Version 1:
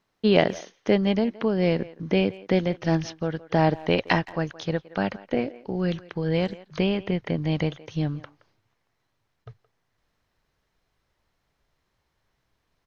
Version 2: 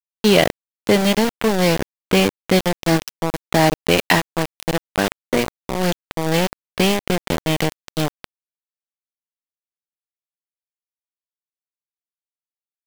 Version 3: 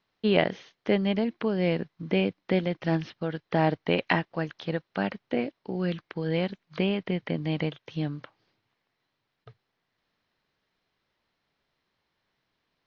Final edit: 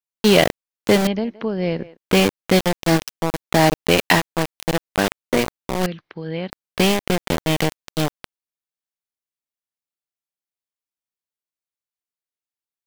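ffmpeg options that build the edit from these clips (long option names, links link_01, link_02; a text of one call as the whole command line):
ffmpeg -i take0.wav -i take1.wav -i take2.wav -filter_complex "[1:a]asplit=3[link_01][link_02][link_03];[link_01]atrim=end=1.072[link_04];[0:a]atrim=start=1.068:end=1.972[link_05];[link_02]atrim=start=1.968:end=5.862[link_06];[2:a]atrim=start=5.858:end=6.502[link_07];[link_03]atrim=start=6.498[link_08];[link_04][link_05]acrossfade=duration=0.004:curve1=hsin:curve2=hsin[link_09];[link_09][link_06]acrossfade=duration=0.004:curve1=hsin:curve2=hsin[link_10];[link_10][link_07]acrossfade=duration=0.004:curve1=hsin:curve2=hsin[link_11];[link_11][link_08]acrossfade=duration=0.004:curve1=hsin:curve2=hsin" out.wav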